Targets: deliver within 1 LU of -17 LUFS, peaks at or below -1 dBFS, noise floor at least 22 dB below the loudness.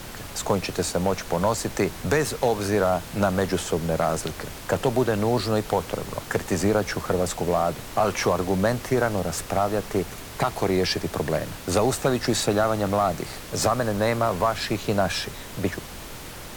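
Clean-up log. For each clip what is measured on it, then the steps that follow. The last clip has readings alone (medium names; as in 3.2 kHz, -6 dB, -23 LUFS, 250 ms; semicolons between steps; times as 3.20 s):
noise floor -39 dBFS; noise floor target -47 dBFS; loudness -25.0 LUFS; peak level -11.0 dBFS; loudness target -17.0 LUFS
-> noise print and reduce 8 dB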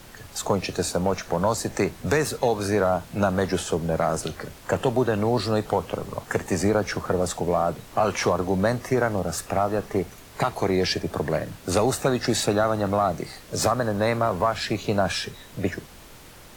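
noise floor -46 dBFS; noise floor target -47 dBFS
-> noise print and reduce 6 dB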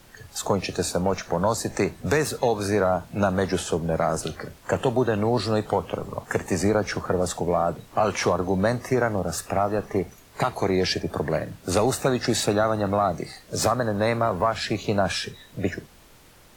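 noise floor -52 dBFS; loudness -25.0 LUFS; peak level -11.0 dBFS; loudness target -17.0 LUFS
-> trim +8 dB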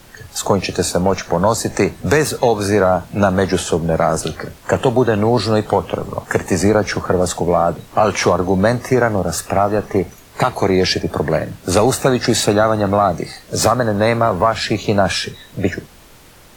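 loudness -17.0 LUFS; peak level -3.0 dBFS; noise floor -44 dBFS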